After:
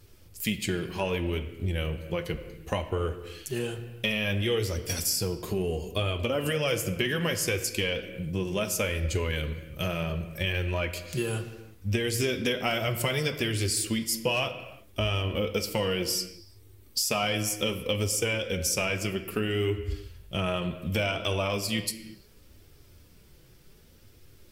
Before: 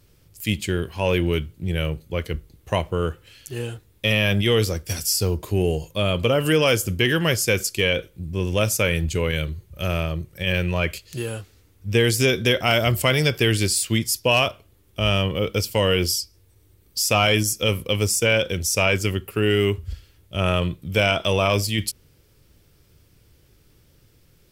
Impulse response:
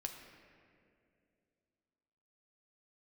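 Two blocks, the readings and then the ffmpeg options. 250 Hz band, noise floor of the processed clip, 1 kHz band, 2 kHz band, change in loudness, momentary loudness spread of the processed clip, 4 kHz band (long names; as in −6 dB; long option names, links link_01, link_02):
−6.5 dB, −55 dBFS, −7.5 dB, −8.0 dB, −7.5 dB, 7 LU, −7.5 dB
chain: -filter_complex "[0:a]acompressor=threshold=-26dB:ratio=6,flanger=delay=2.3:depth=4.1:regen=-28:speed=0.66:shape=triangular,asplit=2[link_01][link_02];[1:a]atrim=start_sample=2205,afade=type=out:start_time=0.42:duration=0.01,atrim=end_sample=18963[link_03];[link_02][link_03]afir=irnorm=-1:irlink=0,volume=5.5dB[link_04];[link_01][link_04]amix=inputs=2:normalize=0,volume=-2.5dB"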